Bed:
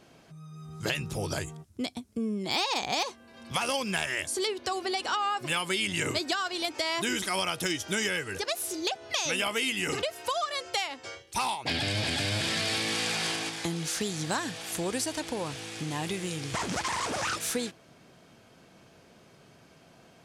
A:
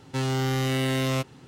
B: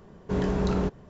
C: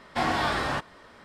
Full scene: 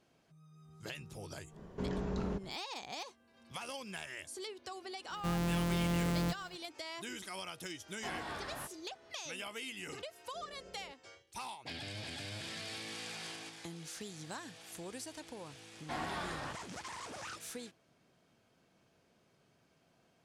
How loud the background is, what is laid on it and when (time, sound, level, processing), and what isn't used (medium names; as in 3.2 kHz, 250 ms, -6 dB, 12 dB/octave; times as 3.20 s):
bed -14.5 dB
1.49 s: add B -2.5 dB, fades 0.10 s + compression 2:1, threshold -38 dBFS
5.10 s: add A -7.5 dB + sorted samples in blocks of 256 samples
7.87 s: add C -17 dB
10.04 s: add B -16.5 dB + cascade formant filter e
15.73 s: add C -14 dB